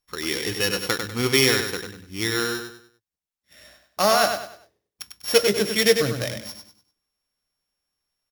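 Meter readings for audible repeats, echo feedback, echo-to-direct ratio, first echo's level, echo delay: 4, 34%, -6.0 dB, -6.5 dB, 98 ms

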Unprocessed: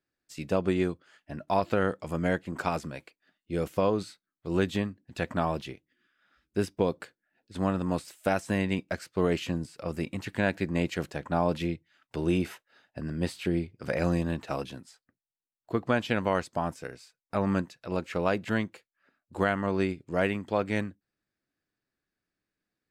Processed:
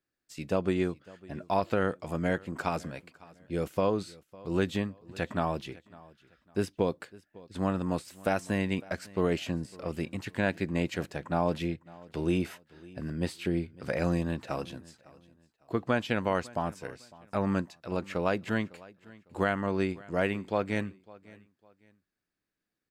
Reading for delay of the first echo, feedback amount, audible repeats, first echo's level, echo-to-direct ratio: 0.554 s, 30%, 2, -22.0 dB, -21.5 dB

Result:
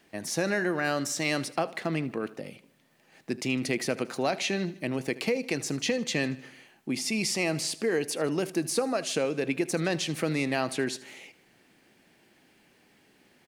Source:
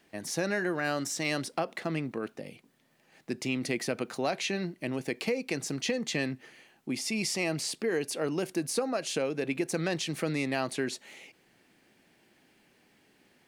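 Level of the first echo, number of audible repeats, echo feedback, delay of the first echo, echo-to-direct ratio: -19.0 dB, 3, 53%, 77 ms, -17.5 dB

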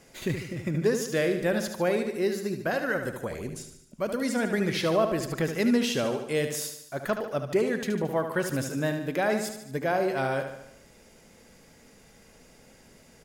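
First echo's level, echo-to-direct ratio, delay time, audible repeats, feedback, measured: -8.0 dB, -6.5 dB, 74 ms, 6, 54%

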